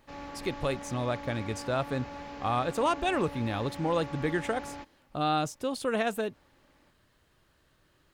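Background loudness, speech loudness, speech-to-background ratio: -42.5 LUFS, -31.5 LUFS, 11.0 dB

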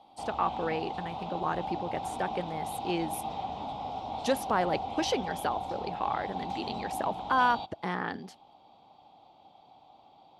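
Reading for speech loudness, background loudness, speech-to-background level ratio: -33.0 LUFS, -37.0 LUFS, 4.0 dB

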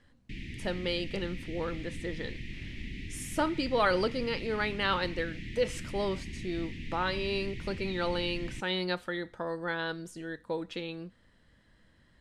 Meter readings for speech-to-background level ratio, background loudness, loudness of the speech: 9.0 dB, -42.5 LUFS, -33.5 LUFS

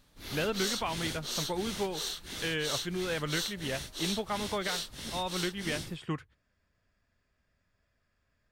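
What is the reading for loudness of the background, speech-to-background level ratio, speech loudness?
-36.5 LUFS, 1.0 dB, -35.5 LUFS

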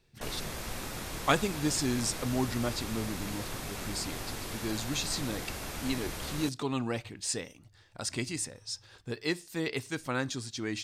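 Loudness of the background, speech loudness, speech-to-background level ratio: -38.5 LUFS, -34.0 LUFS, 4.5 dB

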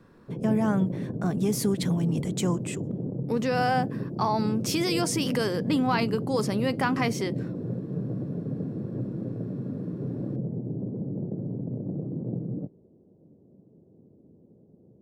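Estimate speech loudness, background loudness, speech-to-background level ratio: -27.5 LUFS, -33.0 LUFS, 5.5 dB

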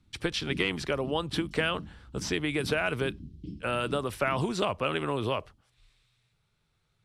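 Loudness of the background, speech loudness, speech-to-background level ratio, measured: -45.0 LUFS, -30.5 LUFS, 14.5 dB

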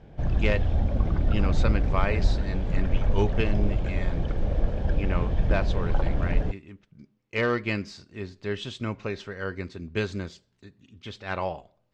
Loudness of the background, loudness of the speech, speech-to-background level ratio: -28.0 LUFS, -32.0 LUFS, -4.0 dB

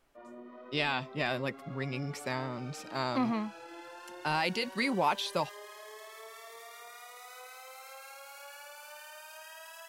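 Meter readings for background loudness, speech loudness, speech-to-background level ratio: -48.0 LUFS, -33.5 LUFS, 14.5 dB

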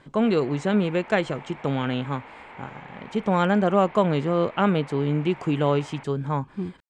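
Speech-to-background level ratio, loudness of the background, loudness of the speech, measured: 20.0 dB, -44.0 LUFS, -24.0 LUFS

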